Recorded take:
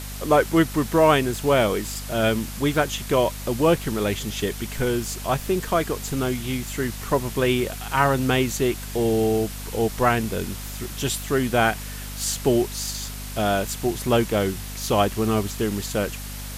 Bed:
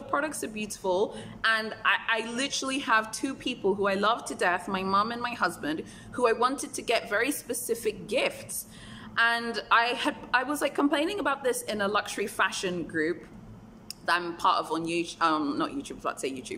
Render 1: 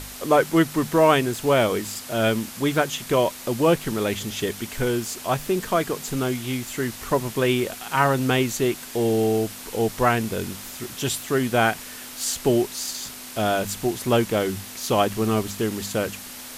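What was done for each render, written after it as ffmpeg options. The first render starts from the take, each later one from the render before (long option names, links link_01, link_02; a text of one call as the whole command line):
ffmpeg -i in.wav -af "bandreject=frequency=50:width_type=h:width=4,bandreject=frequency=100:width_type=h:width=4,bandreject=frequency=150:width_type=h:width=4,bandreject=frequency=200:width_type=h:width=4" out.wav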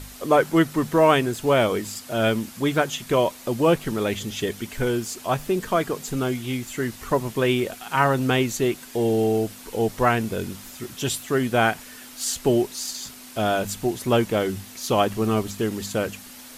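ffmpeg -i in.wav -af "afftdn=noise_reduction=6:noise_floor=-39" out.wav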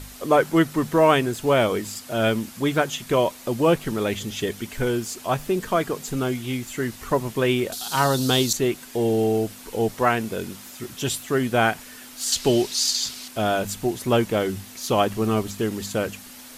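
ffmpeg -i in.wav -filter_complex "[0:a]asettb=1/sr,asplit=3[link_01][link_02][link_03];[link_01]atrim=end=7.724[link_04];[link_02]atrim=start=7.72:end=8.53,asetpts=PTS-STARTPTS,afade=type=in:duration=0.004:curve=qsin,afade=type=out:start_time=0.806:duration=0.004:curve=qsin,highshelf=frequency=3100:width_type=q:width=3:gain=9.5[link_05];[link_03]atrim=start=8.526[link_06];[link_04][link_05]acrossfade=duration=0.004:curve1=hsin:curve2=qsin[link_07];[link_07][link_06]acrossfade=duration=0.004:curve1=qsin:curve2=hsin,asettb=1/sr,asplit=3[link_08][link_09][link_10];[link_08]atrim=end=9.944[link_11];[link_09]atrim=start=9.94:end=10.8,asetpts=PTS-STARTPTS,afade=type=in:duration=0.004:curve=qsin,afade=type=out:start_time=0.856:duration=0.004:curve=qsin,highpass=frequency=160:poles=1[link_12];[link_10]atrim=start=10.796[link_13];[link_11][link_12]acrossfade=duration=0.004:curve1=hsin:curve2=qsin[link_14];[link_14][link_13]acrossfade=duration=0.004:curve1=qsin:curve2=hsin,asettb=1/sr,asplit=3[link_15][link_16][link_17];[link_15]atrim=end=12.324[link_18];[link_16]atrim=start=12.32:end=13.28,asetpts=PTS-STARTPTS,afade=type=in:duration=0.004:curve=qsin,afade=type=out:start_time=0.956:duration=0.004:curve=qsin,equalizer=frequency=4400:width=0.75:gain=11.5[link_19];[link_17]atrim=start=13.276[link_20];[link_18][link_19]acrossfade=duration=0.004:curve1=hsin:curve2=qsin[link_21];[link_21][link_20]acrossfade=duration=0.004:curve1=qsin:curve2=hsin" out.wav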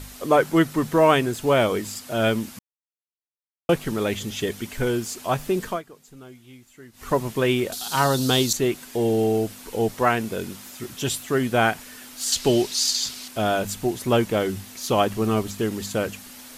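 ffmpeg -i in.wav -filter_complex "[0:a]asplit=5[link_01][link_02][link_03][link_04][link_05];[link_01]atrim=end=2.59,asetpts=PTS-STARTPTS,afade=type=out:start_time=2.586:duration=0.004:curve=hsin[link_06];[link_02]atrim=start=2.59:end=3.69,asetpts=PTS-STARTPTS,volume=0[link_07];[link_03]atrim=start=3.69:end=5.82,asetpts=PTS-STARTPTS,afade=type=in:duration=0.004:curve=hsin,afade=type=out:start_time=1.97:duration=0.16:silence=0.112202[link_08];[link_04]atrim=start=5.82:end=6.93,asetpts=PTS-STARTPTS,volume=-19dB[link_09];[link_05]atrim=start=6.93,asetpts=PTS-STARTPTS,afade=type=in:duration=0.16:silence=0.112202[link_10];[link_06][link_07][link_08][link_09][link_10]concat=n=5:v=0:a=1" out.wav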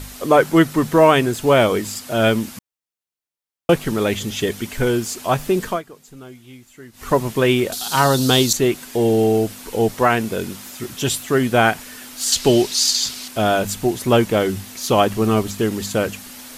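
ffmpeg -i in.wav -af "volume=5dB,alimiter=limit=-2dB:level=0:latency=1" out.wav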